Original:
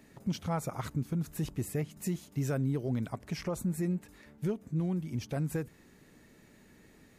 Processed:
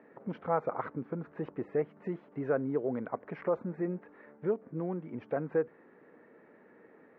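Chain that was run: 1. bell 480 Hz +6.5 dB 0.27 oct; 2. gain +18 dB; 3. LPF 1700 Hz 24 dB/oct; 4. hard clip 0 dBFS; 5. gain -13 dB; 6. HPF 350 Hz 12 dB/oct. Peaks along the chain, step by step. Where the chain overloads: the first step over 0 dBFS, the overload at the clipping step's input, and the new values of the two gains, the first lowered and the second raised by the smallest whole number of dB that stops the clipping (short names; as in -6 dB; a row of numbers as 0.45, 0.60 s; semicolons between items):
-21.5, -3.5, -3.5, -3.5, -16.5, -17.0 dBFS; no overload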